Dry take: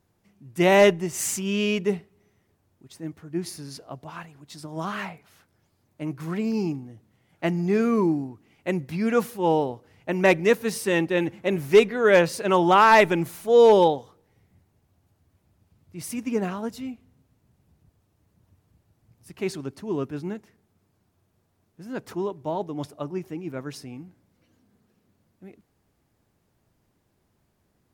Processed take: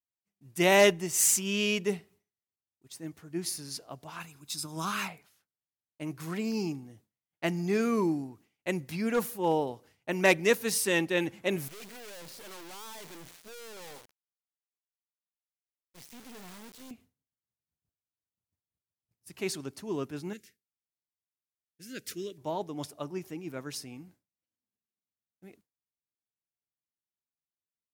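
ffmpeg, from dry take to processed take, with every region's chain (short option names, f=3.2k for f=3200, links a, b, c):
-filter_complex "[0:a]asettb=1/sr,asplit=3[a][b][c];[a]atrim=end=4.204[d];[b]atrim=start=4.2:end=5.08,asetpts=PTS-STARTPTS,afade=t=in:d=0.004:c=qsin,afade=t=out:st=0.876:d=0.004:c=qsin,highshelf=f=3.8k:g=7,aecho=1:1:0.8:0.46,atrim=end_sample=38808[e];[c]atrim=start=5.076[f];[d][e]acrossfade=d=0.004:c1=hsin:c2=qsin[g];[g][f]acrossfade=d=0.004:c1=qsin:c2=hsin,asettb=1/sr,asplit=3[h][i][j];[h]atrim=end=9.014[k];[i]atrim=start=9.01:end=9.67,asetpts=PTS-STARTPTS,afade=t=in:d=0.004:c=qsin,afade=t=out:st=0.656:d=0.004:c=qsin,equalizer=f=4.6k:t=o:w=2.4:g=-5.5,aeval=exprs='clip(val(0),-1,0.126)':c=same[l];[j]atrim=start=9.666[m];[k][l]acrossfade=d=0.004:c1=hsin:c2=qsin[n];[n][m]acrossfade=d=0.004:c1=qsin:c2=hsin,asettb=1/sr,asplit=3[o][p][q];[o]atrim=end=11.684[r];[p]atrim=start=11.68:end=16.91,asetpts=PTS-STARTPTS,afade=t=in:d=0.004:c=qsin,afade=t=out:st=5.226:d=0.004:c=qsin,lowpass=3.2k,aeval=exprs='(tanh(39.8*val(0)+0.35)-tanh(0.35))/39.8':c=same,acrusher=bits=5:dc=4:mix=0:aa=0.000001[s];[q]atrim=start=16.906[t];[r][s]acrossfade=d=0.004:c1=hsin:c2=qsin[u];[u][t]acrossfade=d=0.004:c1=qsin:c2=hsin,asettb=1/sr,asplit=3[v][w][x];[v]atrim=end=20.334[y];[w]atrim=start=20.33:end=22.38,asetpts=PTS-STARTPTS,afade=t=in:d=0.004:c=qsin,afade=t=out:st=2.046:d=0.004:c=qsin,asuperstop=centerf=880:order=4:qfactor=0.68,tiltshelf=f=710:g=-4.5[z];[x]atrim=start=22.376[aa];[y][z]acrossfade=d=0.004:c1=hsin:c2=qsin[ab];[ab][aa]acrossfade=d=0.004:c1=qsin:c2=hsin,lowshelf=f=87:g=-6.5,agate=range=-33dB:threshold=-47dB:ratio=3:detection=peak,highshelf=f=3k:g=11,volume=-5.5dB"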